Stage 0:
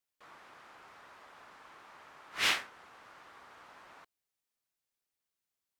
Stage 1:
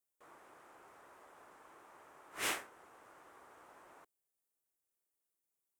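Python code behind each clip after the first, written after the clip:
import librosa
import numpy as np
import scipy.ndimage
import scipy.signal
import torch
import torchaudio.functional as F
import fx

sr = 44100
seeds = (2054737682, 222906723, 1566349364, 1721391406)

y = fx.curve_eq(x, sr, hz=(230.0, 340.0, 4400.0, 8400.0), db=(0, 7, -8, 7))
y = y * 10.0 ** (-5.0 / 20.0)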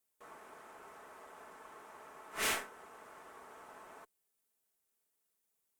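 y = x + 0.44 * np.pad(x, (int(4.6 * sr / 1000.0), 0))[:len(x)]
y = fx.tube_stage(y, sr, drive_db=36.0, bias=0.55)
y = y * 10.0 ** (7.5 / 20.0)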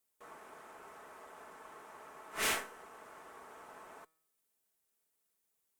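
y = fx.comb_fb(x, sr, f0_hz=160.0, decay_s=0.76, harmonics='all', damping=0.0, mix_pct=40)
y = y * 10.0 ** (5.0 / 20.0)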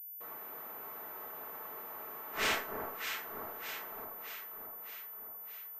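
y = fx.echo_alternate(x, sr, ms=308, hz=1200.0, feedback_pct=76, wet_db=-4)
y = fx.pwm(y, sr, carrier_hz=14000.0)
y = y * 10.0 ** (2.0 / 20.0)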